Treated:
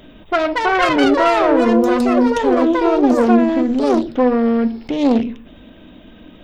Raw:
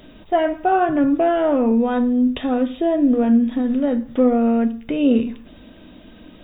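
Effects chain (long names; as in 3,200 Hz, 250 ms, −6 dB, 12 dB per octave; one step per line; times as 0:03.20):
phase distortion by the signal itself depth 0.38 ms
delay with pitch and tempo change per echo 328 ms, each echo +6 semitones, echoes 2
level +2 dB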